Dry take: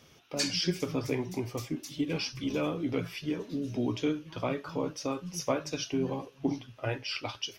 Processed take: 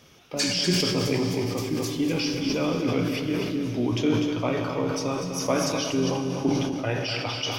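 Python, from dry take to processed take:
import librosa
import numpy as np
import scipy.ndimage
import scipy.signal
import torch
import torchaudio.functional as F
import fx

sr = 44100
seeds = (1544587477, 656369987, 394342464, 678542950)

p1 = x + fx.echo_single(x, sr, ms=248, db=-7.5, dry=0)
p2 = fx.rev_schroeder(p1, sr, rt60_s=3.7, comb_ms=30, drr_db=6.0)
p3 = fx.sustainer(p2, sr, db_per_s=29.0)
y = F.gain(torch.from_numpy(p3), 4.0).numpy()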